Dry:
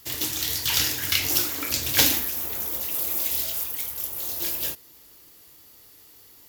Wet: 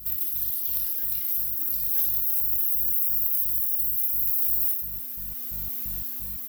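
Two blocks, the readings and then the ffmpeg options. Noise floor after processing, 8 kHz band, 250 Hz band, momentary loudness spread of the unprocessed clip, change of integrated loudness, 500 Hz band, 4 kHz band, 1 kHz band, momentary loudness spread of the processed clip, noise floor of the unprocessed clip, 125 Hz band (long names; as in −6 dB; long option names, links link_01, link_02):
−34 dBFS, −11.0 dB, below −10 dB, 9 LU, +0.5 dB, below −15 dB, below −20 dB, below −15 dB, 9 LU, −52 dBFS, can't be measured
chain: -filter_complex "[0:a]bandreject=frequency=6700:width=16,aexciter=amount=14.3:drive=3.6:freq=11000,acrossover=split=130[link_01][link_02];[link_02]acrusher=bits=6:mix=0:aa=0.000001[link_03];[link_01][link_03]amix=inputs=2:normalize=0,acompressor=threshold=-13dB:ratio=6,aeval=exprs='val(0)+0.00891*(sin(2*PI*50*n/s)+sin(2*PI*2*50*n/s)/2+sin(2*PI*3*50*n/s)/3+sin(2*PI*4*50*n/s)/4+sin(2*PI*5*50*n/s)/5)':channel_layout=same,adynamicequalizer=threshold=0.00316:dfrequency=2500:dqfactor=1.7:tfrequency=2500:tqfactor=1.7:attack=5:release=100:ratio=0.375:range=3.5:mode=cutabove:tftype=bell,dynaudnorm=framelen=200:gausssize=9:maxgain=11.5dB,asplit=2[link_04][link_05];[link_05]aecho=0:1:60|156|309.6|555.4|948.6:0.631|0.398|0.251|0.158|0.1[link_06];[link_04][link_06]amix=inputs=2:normalize=0,afftfilt=real='re*gt(sin(2*PI*2.9*pts/sr)*(1-2*mod(floor(b*sr/1024/220),2)),0)':imag='im*gt(sin(2*PI*2.9*pts/sr)*(1-2*mod(floor(b*sr/1024/220),2)),0)':win_size=1024:overlap=0.75,volume=-4.5dB"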